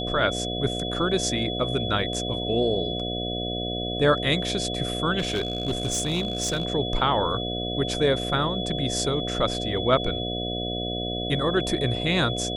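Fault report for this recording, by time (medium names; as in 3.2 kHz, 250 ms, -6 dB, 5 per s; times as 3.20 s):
buzz 60 Hz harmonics 12 -31 dBFS
whine 3.4 kHz -31 dBFS
5.18–6.65 s: clipped -20.5 dBFS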